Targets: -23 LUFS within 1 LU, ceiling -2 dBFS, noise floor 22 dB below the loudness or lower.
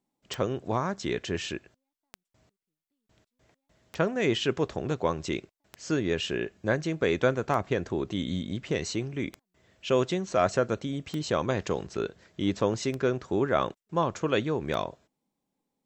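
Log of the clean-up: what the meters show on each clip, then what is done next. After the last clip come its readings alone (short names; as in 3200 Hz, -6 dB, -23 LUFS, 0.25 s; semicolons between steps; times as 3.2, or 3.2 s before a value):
clicks 9; loudness -29.5 LUFS; peak -10.5 dBFS; loudness target -23.0 LUFS
-> de-click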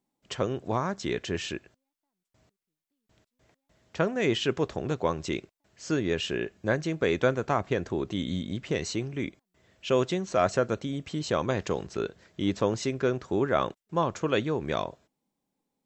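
clicks 0; loudness -29.5 LUFS; peak -10.5 dBFS; loudness target -23.0 LUFS
-> gain +6.5 dB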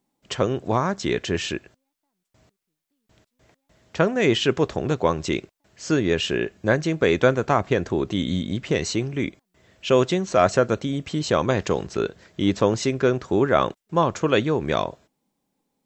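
loudness -23.0 LUFS; peak -4.0 dBFS; noise floor -79 dBFS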